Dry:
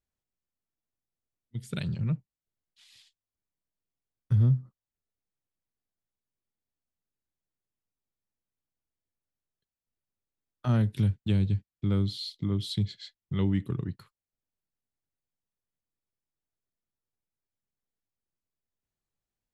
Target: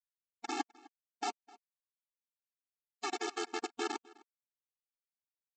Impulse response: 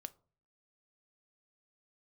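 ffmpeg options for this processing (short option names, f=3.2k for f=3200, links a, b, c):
-filter_complex "[0:a]alimiter=limit=-20dB:level=0:latency=1:release=342,asetrate=154791,aresample=44100,aeval=exprs='val(0)*sin(2*PI*260*n/s)':c=same,aresample=16000,acrusher=bits=3:dc=4:mix=0:aa=0.000001,aresample=44100,asplit=2[a][b];[b]adelay=256.6,volume=-22dB,highshelf=f=4k:g=-5.77[c];[a][c]amix=inputs=2:normalize=0,afftfilt=real='re*eq(mod(floor(b*sr/1024/230),2),1)':imag='im*eq(mod(floor(b*sr/1024/230),2),1)':win_size=1024:overlap=0.75,volume=5dB"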